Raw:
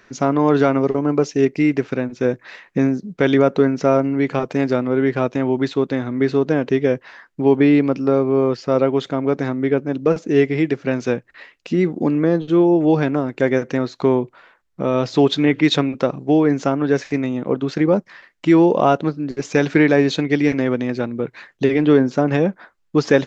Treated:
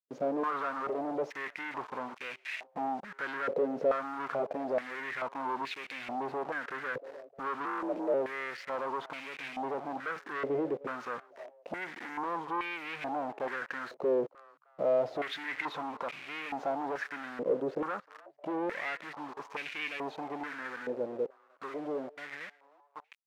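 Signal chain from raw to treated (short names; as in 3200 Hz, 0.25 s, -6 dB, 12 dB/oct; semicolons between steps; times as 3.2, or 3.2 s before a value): ending faded out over 6.71 s; in parallel at +2.5 dB: limiter -14.5 dBFS, peak gain reduction 11.5 dB; on the sum: hard clip -14 dBFS, distortion -7 dB; 7.65–8.14 frequency shift +50 Hz; bit-crush 5-bit; harmonic-percussive split harmonic +4 dB; soft clip -15.5 dBFS, distortion -14 dB; on a send: frequency-shifting echo 0.308 s, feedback 32%, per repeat +140 Hz, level -23 dB; on the sum: stepped band-pass 2.3 Hz 510–2400 Hz; gain -2.5 dB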